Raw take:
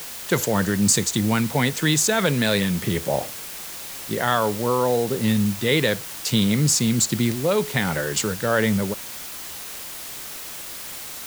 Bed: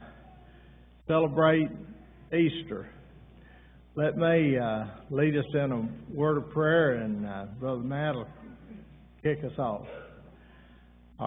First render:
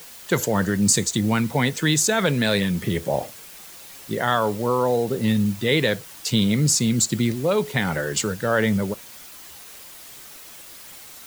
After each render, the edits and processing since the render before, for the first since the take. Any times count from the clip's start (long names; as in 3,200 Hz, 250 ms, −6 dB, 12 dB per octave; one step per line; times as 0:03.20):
broadband denoise 8 dB, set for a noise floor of −35 dBFS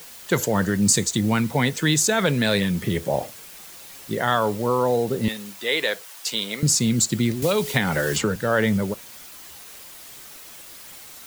0:05.28–0:06.63: high-pass filter 540 Hz
0:07.42–0:08.36: multiband upward and downward compressor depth 100%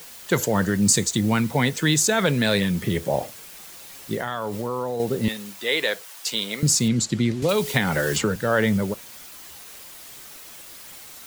0:04.15–0:05.00: downward compressor, threshold −23 dBFS
0:06.88–0:07.49: high-frequency loss of the air 61 metres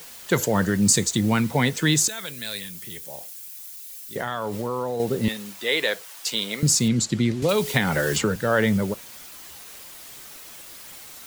0:02.08–0:04.16: first-order pre-emphasis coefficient 0.9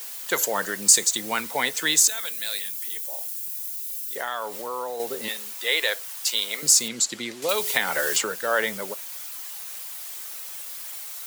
high-pass filter 570 Hz 12 dB per octave
high-shelf EQ 7,300 Hz +8 dB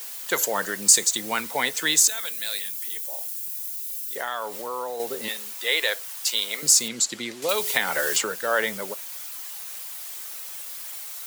no processing that can be heard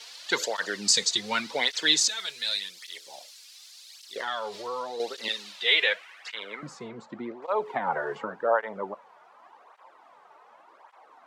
low-pass filter sweep 4,400 Hz → 950 Hz, 0:05.42–0:06.93
through-zero flanger with one copy inverted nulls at 0.87 Hz, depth 4 ms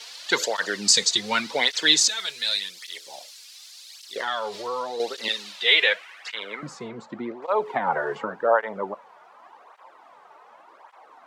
level +4 dB